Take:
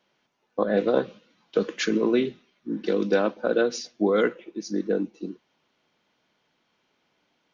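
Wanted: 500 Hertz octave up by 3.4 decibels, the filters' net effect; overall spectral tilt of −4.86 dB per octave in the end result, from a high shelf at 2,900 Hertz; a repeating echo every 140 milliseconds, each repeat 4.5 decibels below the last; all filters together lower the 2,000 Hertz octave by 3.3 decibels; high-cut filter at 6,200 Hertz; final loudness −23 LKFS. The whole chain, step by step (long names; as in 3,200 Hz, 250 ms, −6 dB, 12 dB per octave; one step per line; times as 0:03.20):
low-pass filter 6,200 Hz
parametric band 500 Hz +4 dB
parametric band 2,000 Hz −6.5 dB
high-shelf EQ 2,900 Hz +3.5 dB
repeating echo 140 ms, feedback 60%, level −4.5 dB
level −1 dB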